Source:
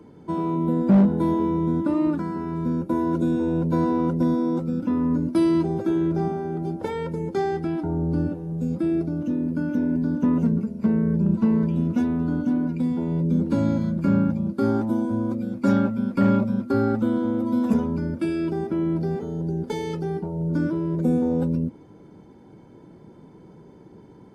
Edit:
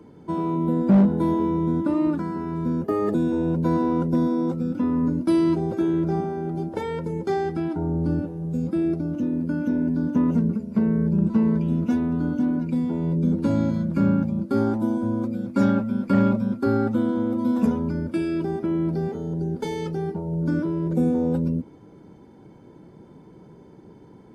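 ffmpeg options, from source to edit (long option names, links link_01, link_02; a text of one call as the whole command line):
ffmpeg -i in.wav -filter_complex "[0:a]asplit=3[link_01][link_02][link_03];[link_01]atrim=end=2.844[link_04];[link_02]atrim=start=2.84:end=3.22,asetpts=PTS-STARTPTS,asetrate=55125,aresample=44100,atrim=end_sample=13406,asetpts=PTS-STARTPTS[link_05];[link_03]atrim=start=3.216[link_06];[link_04][link_05]acrossfade=duration=0.004:curve1=hsin:curve2=hsin[link_07];[link_07][link_06]acrossfade=duration=0.004:curve1=hsin:curve2=hsin" out.wav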